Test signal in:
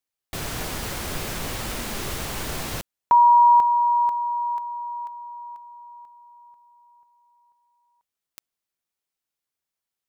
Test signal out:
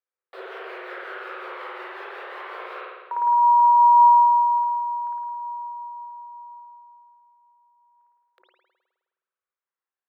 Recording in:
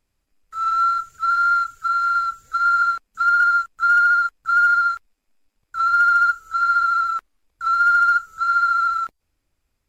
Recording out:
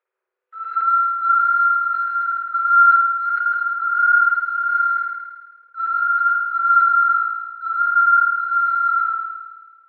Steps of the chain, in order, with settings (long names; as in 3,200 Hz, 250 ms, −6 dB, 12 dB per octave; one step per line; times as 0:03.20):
one scale factor per block 7 bits
parametric band 4,300 Hz +2.5 dB 0.54 octaves
brickwall limiter −14.5 dBFS
amplitude tremolo 5.5 Hz, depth 59%
phase shifter 0.25 Hz, delay 1.2 ms, feedback 31%
Chebyshev high-pass with heavy ripple 360 Hz, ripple 9 dB
high-frequency loss of the air 460 metres
spring reverb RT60 1.4 s, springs 52 ms, chirp 60 ms, DRR −4.5 dB
level that may fall only so fast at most 45 dB per second
level +2 dB